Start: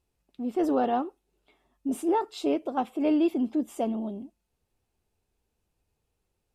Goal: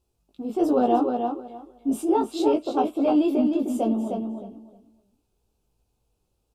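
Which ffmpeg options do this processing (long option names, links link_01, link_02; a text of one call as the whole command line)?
ffmpeg -i in.wav -filter_complex "[0:a]equalizer=frequency=1900:width_type=o:width=0.62:gain=-13.5,flanger=delay=16.5:depth=2.3:speed=1.2,asplit=2[link_01][link_02];[link_02]adelay=308,lowpass=frequency=4900:poles=1,volume=-5dB,asplit=2[link_03][link_04];[link_04]adelay=308,lowpass=frequency=4900:poles=1,volume=0.2,asplit=2[link_05][link_06];[link_06]adelay=308,lowpass=frequency=4900:poles=1,volume=0.2[link_07];[link_01][link_03][link_05][link_07]amix=inputs=4:normalize=0,volume=7dB" out.wav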